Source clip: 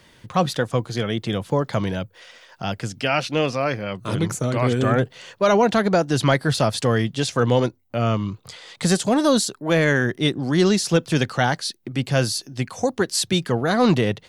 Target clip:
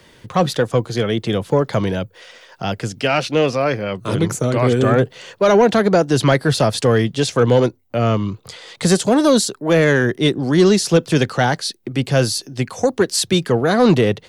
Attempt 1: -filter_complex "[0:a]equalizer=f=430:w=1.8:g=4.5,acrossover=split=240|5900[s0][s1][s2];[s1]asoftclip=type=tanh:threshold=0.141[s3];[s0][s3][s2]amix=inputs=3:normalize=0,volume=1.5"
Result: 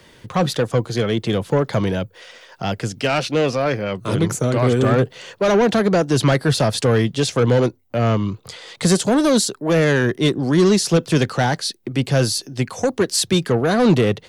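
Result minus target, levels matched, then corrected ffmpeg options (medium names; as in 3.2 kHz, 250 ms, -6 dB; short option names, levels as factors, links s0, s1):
saturation: distortion +9 dB
-filter_complex "[0:a]equalizer=f=430:w=1.8:g=4.5,acrossover=split=240|5900[s0][s1][s2];[s1]asoftclip=type=tanh:threshold=0.335[s3];[s0][s3][s2]amix=inputs=3:normalize=0,volume=1.5"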